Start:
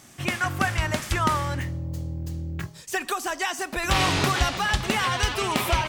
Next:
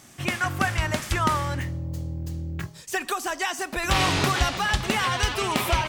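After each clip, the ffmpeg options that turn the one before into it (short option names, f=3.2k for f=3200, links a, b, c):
-af anull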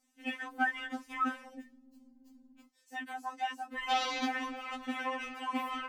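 -af "afwtdn=0.0398,afftfilt=real='re*3.46*eq(mod(b,12),0)':imag='im*3.46*eq(mod(b,12),0)':win_size=2048:overlap=0.75,volume=-7dB"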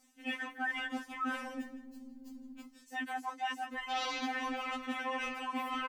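-filter_complex "[0:a]areverse,acompressor=threshold=-45dB:ratio=4,areverse,asplit=2[a][b];[b]adelay=163,lowpass=f=4k:p=1,volume=-11.5dB,asplit=2[c][d];[d]adelay=163,lowpass=f=4k:p=1,volume=0.27,asplit=2[e][f];[f]adelay=163,lowpass=f=4k:p=1,volume=0.27[g];[a][c][e][g]amix=inputs=4:normalize=0,volume=9dB"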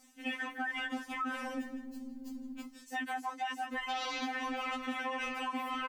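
-af "acompressor=threshold=-39dB:ratio=6,volume=5.5dB"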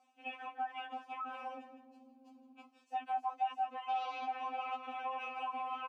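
-filter_complex "[0:a]asplit=3[a][b][c];[a]bandpass=f=730:t=q:w=8,volume=0dB[d];[b]bandpass=f=1.09k:t=q:w=8,volume=-6dB[e];[c]bandpass=f=2.44k:t=q:w=8,volume=-9dB[f];[d][e][f]amix=inputs=3:normalize=0,volume=6.5dB"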